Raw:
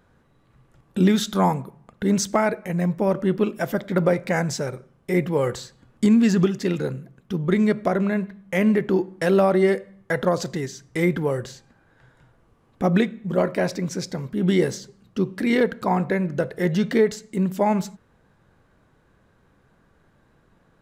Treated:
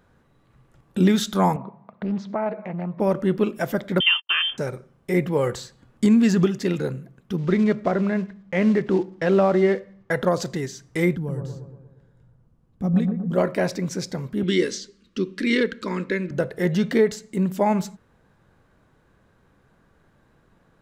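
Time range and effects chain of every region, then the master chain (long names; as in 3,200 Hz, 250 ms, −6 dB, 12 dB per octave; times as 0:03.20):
0:01.56–0:03.00: downward compressor 3 to 1, threshold −30 dBFS + loudspeaker in its box 160–3,600 Hz, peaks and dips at 200 Hz +8 dB, 320 Hz −4 dB, 650 Hz +8 dB, 1,000 Hz +8 dB, 1,600 Hz −4 dB, 3,000 Hz −8 dB + highs frequency-modulated by the lows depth 0.38 ms
0:04.00–0:04.58: noise gate −30 dBFS, range −57 dB + voice inversion scrambler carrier 3,300 Hz
0:07.38–0:10.11: one scale factor per block 5 bits + high-frequency loss of the air 150 metres
0:11.16–0:13.32: drawn EQ curve 190 Hz 0 dB, 360 Hz −11 dB, 2,100 Hz −16 dB, 5,300 Hz −11 dB + bucket-brigade delay 118 ms, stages 1,024, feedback 55%, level −4.5 dB
0:14.43–0:16.31: low-pass filter 4,600 Hz + high-shelf EQ 2,800 Hz +11.5 dB + phaser with its sweep stopped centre 310 Hz, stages 4
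whole clip: no processing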